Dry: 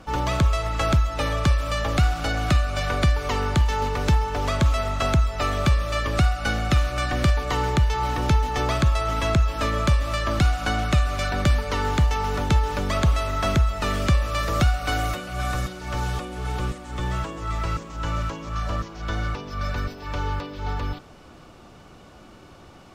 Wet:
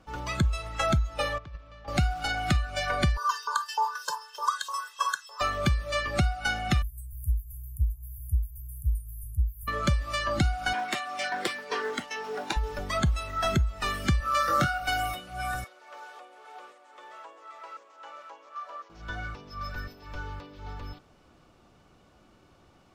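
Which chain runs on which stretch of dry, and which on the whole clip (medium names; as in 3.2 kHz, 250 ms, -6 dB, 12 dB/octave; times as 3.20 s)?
1.38–1.88 s: gate -18 dBFS, range -18 dB + compressor with a negative ratio -27 dBFS + distance through air 170 m
3.17–5.41 s: static phaser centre 450 Hz, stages 8 + comb 1.9 ms, depth 88% + LFO high-pass saw up 3.3 Hz 680–3000 Hz
6.82–9.68 s: inverse Chebyshev band-stop 240–5100 Hz, stop band 50 dB + treble shelf 5.6 kHz +9 dB
10.73–12.57 s: high-pass 210 Hz 24 dB/octave + loudspeaker Doppler distortion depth 0.62 ms
14.20–14.80 s: high-pass 85 Hz + peaking EQ 1.4 kHz +8.5 dB 0.34 oct + doubling 22 ms -4 dB
15.64–18.90 s: high-pass 480 Hz 24 dB/octave + treble shelf 3 kHz -9.5 dB
whole clip: spectral noise reduction 12 dB; compression 5:1, threshold -21 dBFS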